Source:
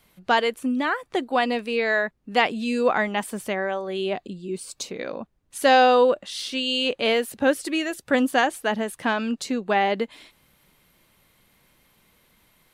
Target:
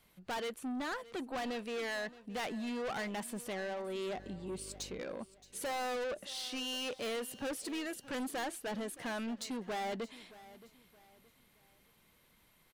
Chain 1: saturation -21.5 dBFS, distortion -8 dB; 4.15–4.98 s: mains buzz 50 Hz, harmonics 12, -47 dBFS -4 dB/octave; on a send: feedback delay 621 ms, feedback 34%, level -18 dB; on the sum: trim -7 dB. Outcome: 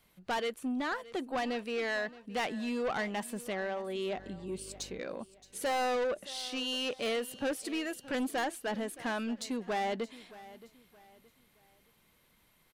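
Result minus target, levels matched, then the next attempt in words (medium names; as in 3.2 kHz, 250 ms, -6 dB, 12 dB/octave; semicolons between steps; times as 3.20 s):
saturation: distortion -4 dB
saturation -28.5 dBFS, distortion -4 dB; 4.15–4.98 s: mains buzz 50 Hz, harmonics 12, -47 dBFS -4 dB/octave; on a send: feedback delay 621 ms, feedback 34%, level -18 dB; on the sum: trim -7 dB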